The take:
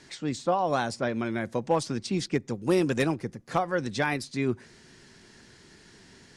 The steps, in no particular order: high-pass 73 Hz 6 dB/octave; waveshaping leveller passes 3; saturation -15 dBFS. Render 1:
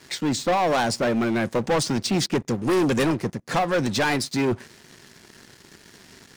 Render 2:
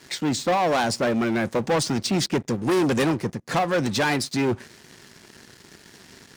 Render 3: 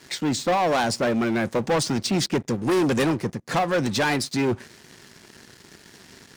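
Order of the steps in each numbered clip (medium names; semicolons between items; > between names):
high-pass > waveshaping leveller > saturation; waveshaping leveller > saturation > high-pass; waveshaping leveller > high-pass > saturation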